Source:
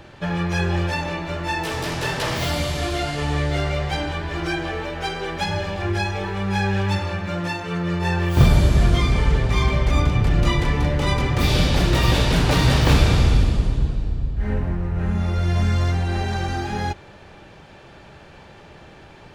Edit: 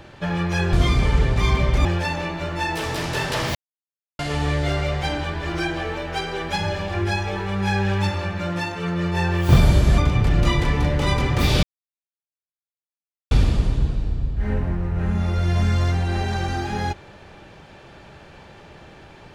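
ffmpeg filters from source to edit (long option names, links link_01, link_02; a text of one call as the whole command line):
ffmpeg -i in.wav -filter_complex "[0:a]asplit=8[link_01][link_02][link_03][link_04][link_05][link_06][link_07][link_08];[link_01]atrim=end=0.732[link_09];[link_02]atrim=start=8.858:end=9.982[link_10];[link_03]atrim=start=0.728:end=2.43,asetpts=PTS-STARTPTS,afade=type=out:start_time=1.698:duration=0.004:curve=hsin[link_11];[link_04]atrim=start=2.43:end=3.07,asetpts=PTS-STARTPTS,volume=0[link_12];[link_05]atrim=start=3.07:end=8.862,asetpts=PTS-STARTPTS,afade=type=in:duration=0.004:curve=hsin[link_13];[link_06]atrim=start=9.978:end=11.63,asetpts=PTS-STARTPTS,afade=type=out:start_time=1.648:duration=0.004:curve=hsin[link_14];[link_07]atrim=start=11.63:end=13.31,asetpts=PTS-STARTPTS,volume=0[link_15];[link_08]atrim=start=13.31,asetpts=PTS-STARTPTS,afade=type=in:duration=0.004:curve=hsin[link_16];[link_09][link_10]acrossfade=duration=0.004:curve1=hsin:curve2=hsin[link_17];[link_11][link_12][link_13]concat=n=3:v=0:a=1[link_18];[link_17][link_18]acrossfade=duration=0.004:curve1=hsin:curve2=hsin[link_19];[link_14][link_15][link_16]concat=n=3:v=0:a=1[link_20];[link_19][link_20]acrossfade=duration=0.004:curve1=hsin:curve2=hsin" out.wav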